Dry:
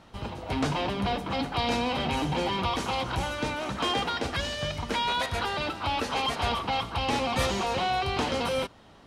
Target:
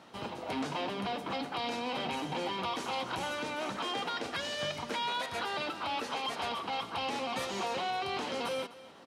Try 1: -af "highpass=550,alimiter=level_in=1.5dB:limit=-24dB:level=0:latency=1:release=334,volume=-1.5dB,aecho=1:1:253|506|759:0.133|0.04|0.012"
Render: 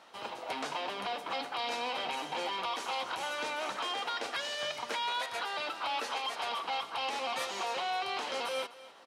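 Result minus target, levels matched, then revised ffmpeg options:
250 Hz band −9.5 dB
-af "highpass=210,alimiter=level_in=1.5dB:limit=-24dB:level=0:latency=1:release=334,volume=-1.5dB,aecho=1:1:253|506|759:0.133|0.04|0.012"

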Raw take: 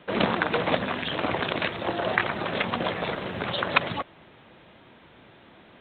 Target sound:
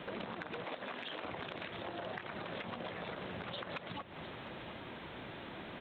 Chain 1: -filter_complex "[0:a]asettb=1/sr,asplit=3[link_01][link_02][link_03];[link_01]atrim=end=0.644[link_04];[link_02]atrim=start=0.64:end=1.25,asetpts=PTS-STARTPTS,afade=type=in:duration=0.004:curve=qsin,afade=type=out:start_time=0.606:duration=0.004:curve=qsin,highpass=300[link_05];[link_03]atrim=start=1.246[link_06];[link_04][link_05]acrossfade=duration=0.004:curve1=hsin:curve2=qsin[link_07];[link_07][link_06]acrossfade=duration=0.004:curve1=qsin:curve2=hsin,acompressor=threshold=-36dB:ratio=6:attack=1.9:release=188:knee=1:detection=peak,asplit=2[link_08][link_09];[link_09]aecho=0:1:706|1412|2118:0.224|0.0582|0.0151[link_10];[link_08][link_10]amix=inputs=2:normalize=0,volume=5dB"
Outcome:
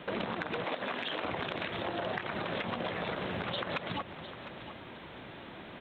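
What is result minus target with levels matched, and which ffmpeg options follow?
downward compressor: peak gain reduction −7.5 dB
-filter_complex "[0:a]asettb=1/sr,asplit=3[link_01][link_02][link_03];[link_01]atrim=end=0.644[link_04];[link_02]atrim=start=0.64:end=1.25,asetpts=PTS-STARTPTS,afade=type=in:duration=0.004:curve=qsin,afade=type=out:start_time=0.606:duration=0.004:curve=qsin,highpass=300[link_05];[link_03]atrim=start=1.246[link_06];[link_04][link_05]acrossfade=duration=0.004:curve1=hsin:curve2=qsin[link_07];[link_07][link_06]acrossfade=duration=0.004:curve1=qsin:curve2=hsin,acompressor=threshold=-45dB:ratio=6:attack=1.9:release=188:knee=1:detection=peak,asplit=2[link_08][link_09];[link_09]aecho=0:1:706|1412|2118:0.224|0.0582|0.0151[link_10];[link_08][link_10]amix=inputs=2:normalize=0,volume=5dB"

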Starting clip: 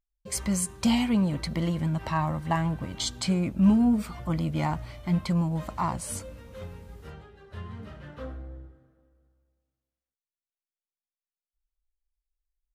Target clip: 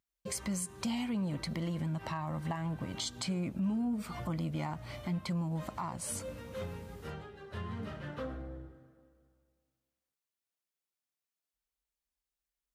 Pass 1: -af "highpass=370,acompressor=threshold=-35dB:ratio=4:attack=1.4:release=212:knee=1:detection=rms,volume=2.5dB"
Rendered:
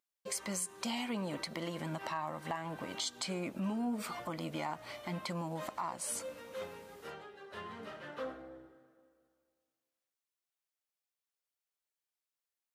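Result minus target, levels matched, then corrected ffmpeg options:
125 Hz band −6.5 dB
-af "highpass=97,acompressor=threshold=-35dB:ratio=4:attack=1.4:release=212:knee=1:detection=rms,volume=2.5dB"

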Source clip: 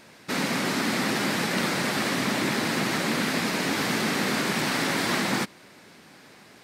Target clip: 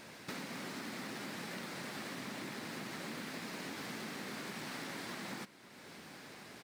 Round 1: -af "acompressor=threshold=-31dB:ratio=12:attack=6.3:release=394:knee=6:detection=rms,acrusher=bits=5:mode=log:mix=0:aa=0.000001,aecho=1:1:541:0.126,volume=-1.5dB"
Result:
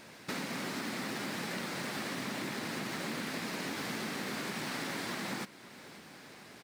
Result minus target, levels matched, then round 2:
downward compressor: peak gain reduction −6 dB
-af "acompressor=threshold=-37.5dB:ratio=12:attack=6.3:release=394:knee=6:detection=rms,acrusher=bits=5:mode=log:mix=0:aa=0.000001,aecho=1:1:541:0.126,volume=-1.5dB"

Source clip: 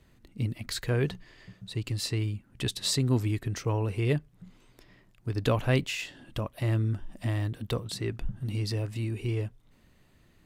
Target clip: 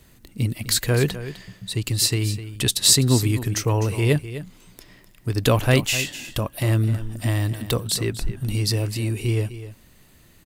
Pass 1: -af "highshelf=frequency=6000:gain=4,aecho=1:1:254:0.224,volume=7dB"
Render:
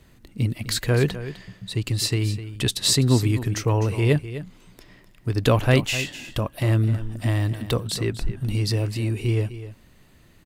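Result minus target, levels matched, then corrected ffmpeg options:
8,000 Hz band −5.0 dB
-af "highshelf=frequency=6000:gain=14.5,aecho=1:1:254:0.224,volume=7dB"

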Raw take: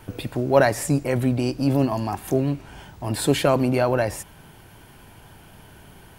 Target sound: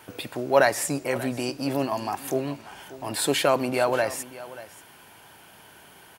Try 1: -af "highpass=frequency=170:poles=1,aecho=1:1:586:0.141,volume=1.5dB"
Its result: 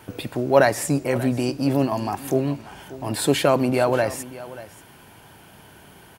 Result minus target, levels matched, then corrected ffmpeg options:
125 Hz band +6.0 dB
-af "highpass=frequency=640:poles=1,aecho=1:1:586:0.141,volume=1.5dB"

